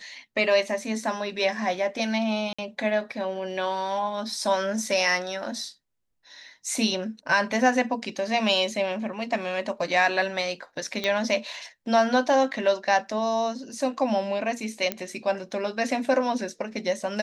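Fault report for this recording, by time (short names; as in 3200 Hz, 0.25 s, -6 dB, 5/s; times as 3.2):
2.53–2.58 gap 55 ms
11.04 pop -13 dBFS
14.92 pop -11 dBFS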